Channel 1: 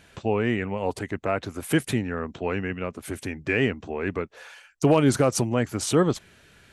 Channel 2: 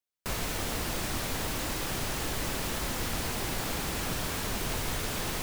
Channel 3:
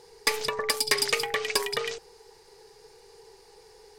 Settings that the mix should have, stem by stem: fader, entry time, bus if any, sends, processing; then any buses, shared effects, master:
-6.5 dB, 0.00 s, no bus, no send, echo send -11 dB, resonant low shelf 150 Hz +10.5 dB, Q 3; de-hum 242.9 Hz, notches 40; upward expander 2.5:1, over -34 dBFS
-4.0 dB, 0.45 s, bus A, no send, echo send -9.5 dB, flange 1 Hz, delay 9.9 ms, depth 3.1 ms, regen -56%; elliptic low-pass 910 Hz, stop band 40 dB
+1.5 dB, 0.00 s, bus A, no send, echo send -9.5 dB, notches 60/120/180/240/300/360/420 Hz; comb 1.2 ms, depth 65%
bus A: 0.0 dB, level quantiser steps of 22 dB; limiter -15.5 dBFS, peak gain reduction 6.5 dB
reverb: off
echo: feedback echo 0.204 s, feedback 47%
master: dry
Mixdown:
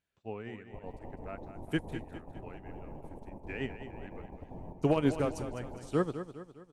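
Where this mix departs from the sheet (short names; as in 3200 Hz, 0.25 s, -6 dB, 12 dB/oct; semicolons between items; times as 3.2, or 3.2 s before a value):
stem 1: missing resonant low shelf 150 Hz +10.5 dB, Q 3; stem 3: muted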